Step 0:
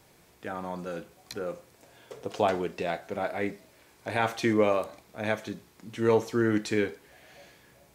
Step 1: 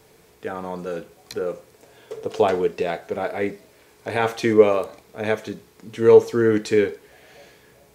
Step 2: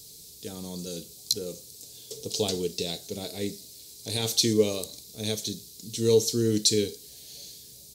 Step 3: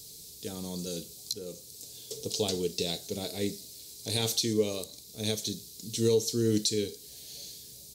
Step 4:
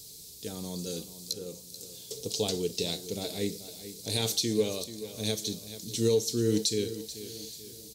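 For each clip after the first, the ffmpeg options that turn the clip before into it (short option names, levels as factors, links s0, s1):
-af "equalizer=f=440:t=o:w=0.2:g=11,volume=1.58"
-af "firequalizer=gain_entry='entry(120,0);entry(690,-17);entry(1500,-23);entry(4000,14)':delay=0.05:min_phase=1"
-af "alimiter=limit=0.168:level=0:latency=1:release=499"
-af "aecho=1:1:435|870|1305|1740:0.211|0.0909|0.0391|0.0168"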